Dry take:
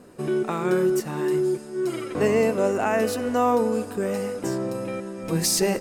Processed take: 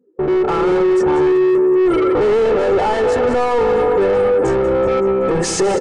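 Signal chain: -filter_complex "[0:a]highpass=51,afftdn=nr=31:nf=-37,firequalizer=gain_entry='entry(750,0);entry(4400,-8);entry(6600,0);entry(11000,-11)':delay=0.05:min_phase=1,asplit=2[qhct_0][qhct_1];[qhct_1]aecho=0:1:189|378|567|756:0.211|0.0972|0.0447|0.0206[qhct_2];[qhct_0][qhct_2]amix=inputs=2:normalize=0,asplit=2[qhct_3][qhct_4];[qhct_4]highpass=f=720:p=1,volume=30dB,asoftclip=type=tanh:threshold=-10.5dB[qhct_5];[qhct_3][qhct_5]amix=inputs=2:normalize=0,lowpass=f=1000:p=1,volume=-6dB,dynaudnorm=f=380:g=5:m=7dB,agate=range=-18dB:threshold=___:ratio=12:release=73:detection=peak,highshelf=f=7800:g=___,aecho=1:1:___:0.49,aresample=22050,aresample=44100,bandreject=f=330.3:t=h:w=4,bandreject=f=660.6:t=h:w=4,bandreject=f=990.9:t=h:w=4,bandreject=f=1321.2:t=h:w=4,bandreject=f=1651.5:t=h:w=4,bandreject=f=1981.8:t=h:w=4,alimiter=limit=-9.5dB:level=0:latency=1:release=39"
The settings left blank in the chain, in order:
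-31dB, 7, 2.3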